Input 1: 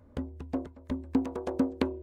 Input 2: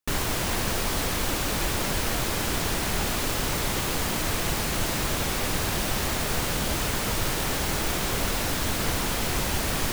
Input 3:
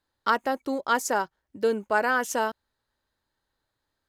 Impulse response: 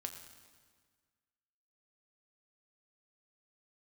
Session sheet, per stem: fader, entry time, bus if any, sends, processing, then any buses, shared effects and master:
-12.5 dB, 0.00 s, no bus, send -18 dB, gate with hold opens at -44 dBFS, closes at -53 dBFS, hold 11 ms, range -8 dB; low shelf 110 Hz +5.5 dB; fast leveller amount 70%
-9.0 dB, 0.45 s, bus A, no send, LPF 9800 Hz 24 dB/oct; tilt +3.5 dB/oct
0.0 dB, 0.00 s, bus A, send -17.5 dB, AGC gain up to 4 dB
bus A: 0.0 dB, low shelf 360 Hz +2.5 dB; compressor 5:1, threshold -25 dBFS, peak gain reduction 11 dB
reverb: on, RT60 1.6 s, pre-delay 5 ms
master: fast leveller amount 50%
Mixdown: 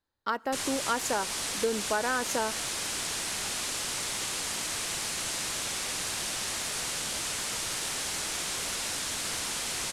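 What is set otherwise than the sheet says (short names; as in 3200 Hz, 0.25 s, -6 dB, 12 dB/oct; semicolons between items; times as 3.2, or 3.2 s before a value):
stem 1: muted; stem 3 0.0 dB -> -7.0 dB; master: missing fast leveller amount 50%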